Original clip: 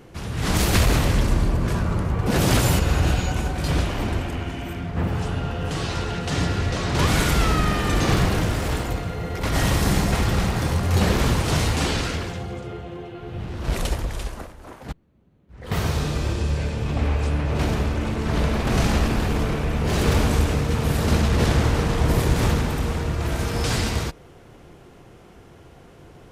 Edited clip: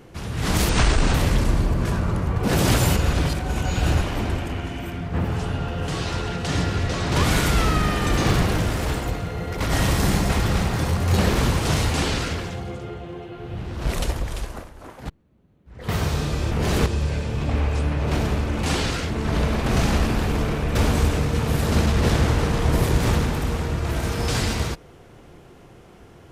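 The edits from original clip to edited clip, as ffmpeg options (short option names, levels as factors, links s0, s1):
-filter_complex "[0:a]asplit=10[s0][s1][s2][s3][s4][s5][s6][s7][s8][s9];[s0]atrim=end=0.694[s10];[s1]atrim=start=0.69:end=0.97,asetpts=PTS-STARTPTS,asetrate=27342,aresample=44100,atrim=end_sample=19916,asetpts=PTS-STARTPTS[s11];[s2]atrim=start=0.966:end=2.962[s12];[s3]atrim=start=2.958:end=3.842,asetpts=PTS-STARTPTS,areverse[s13];[s4]atrim=start=3.838:end=16.342[s14];[s5]atrim=start=19.758:end=20.112[s15];[s6]atrim=start=16.338:end=18.112[s16];[s7]atrim=start=11.738:end=12.212[s17];[s8]atrim=start=18.108:end=19.762[s18];[s9]atrim=start=20.108[s19];[s10][s11]acrossfade=d=0.004:c1=hsin:c2=hsin[s20];[s20][s12]acrossfade=d=0.004:c1=hsin:c2=hsin[s21];[s21][s13]acrossfade=d=0.004:c1=hsin:c2=hsin[s22];[s22][s14]acrossfade=d=0.004:c1=hsin:c2=hsin[s23];[s23][s15]acrossfade=d=0.004:c1=hsin:c2=hsin[s24];[s24][s16]acrossfade=d=0.004:c1=hsin:c2=hsin[s25];[s25][s17]acrossfade=d=0.004:c1=hsin:c2=hsin[s26];[s26][s18]acrossfade=d=0.004:c1=hsin:c2=hsin[s27];[s27][s19]acrossfade=d=0.004:c1=hsin:c2=hsin"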